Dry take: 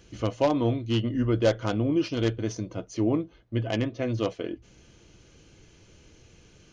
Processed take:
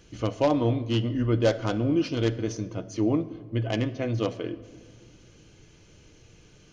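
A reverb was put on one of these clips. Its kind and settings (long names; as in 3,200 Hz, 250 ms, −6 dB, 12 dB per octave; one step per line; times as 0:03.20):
rectangular room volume 2,300 cubic metres, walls mixed, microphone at 0.44 metres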